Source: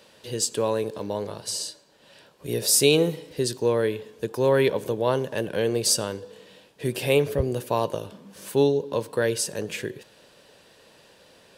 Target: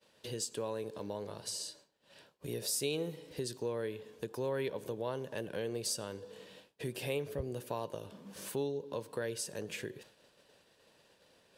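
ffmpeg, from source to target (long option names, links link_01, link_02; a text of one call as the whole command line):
ffmpeg -i in.wav -af "agate=range=-33dB:threshold=-45dB:ratio=3:detection=peak,acompressor=threshold=-46dB:ratio=2" out.wav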